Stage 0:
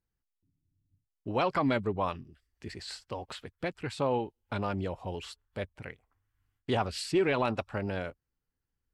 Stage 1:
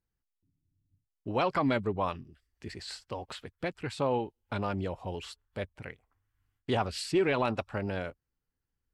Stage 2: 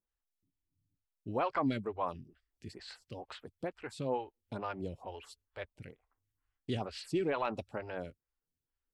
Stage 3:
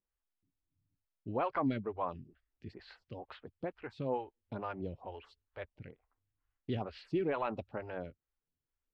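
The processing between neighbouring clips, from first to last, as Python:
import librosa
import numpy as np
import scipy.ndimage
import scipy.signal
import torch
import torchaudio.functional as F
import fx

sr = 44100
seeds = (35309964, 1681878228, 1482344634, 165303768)

y1 = x
y2 = fx.stagger_phaser(y1, sr, hz=2.2)
y2 = F.gain(torch.from_numpy(y2), -3.0).numpy()
y3 = fx.air_absorb(y2, sr, metres=270.0)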